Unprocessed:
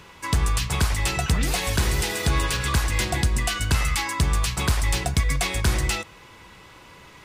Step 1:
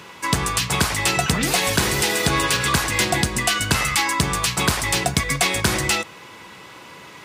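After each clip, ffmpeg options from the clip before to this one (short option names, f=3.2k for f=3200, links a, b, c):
-af "highpass=150,volume=6.5dB"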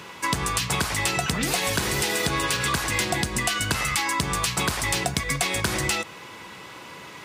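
-af "acompressor=threshold=-21dB:ratio=6"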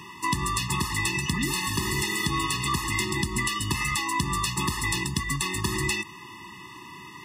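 -af "afftfilt=real='re*eq(mod(floor(b*sr/1024/420),2),0)':imag='im*eq(mod(floor(b*sr/1024/420),2),0)':win_size=1024:overlap=0.75"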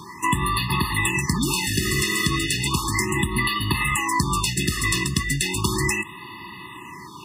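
-af "afftfilt=real='re*(1-between(b*sr/1024,690*pow(7200/690,0.5+0.5*sin(2*PI*0.35*pts/sr))/1.41,690*pow(7200/690,0.5+0.5*sin(2*PI*0.35*pts/sr))*1.41))':imag='im*(1-between(b*sr/1024,690*pow(7200/690,0.5+0.5*sin(2*PI*0.35*pts/sr))/1.41,690*pow(7200/690,0.5+0.5*sin(2*PI*0.35*pts/sr))*1.41))':win_size=1024:overlap=0.75,volume=5dB"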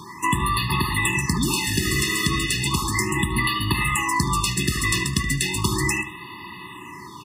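-filter_complex "[0:a]asplit=2[a][b];[b]adelay=74,lowpass=f=2.3k:p=1,volume=-9dB,asplit=2[c][d];[d]adelay=74,lowpass=f=2.3k:p=1,volume=0.46,asplit=2[e][f];[f]adelay=74,lowpass=f=2.3k:p=1,volume=0.46,asplit=2[g][h];[h]adelay=74,lowpass=f=2.3k:p=1,volume=0.46,asplit=2[i][j];[j]adelay=74,lowpass=f=2.3k:p=1,volume=0.46[k];[a][c][e][g][i][k]amix=inputs=6:normalize=0"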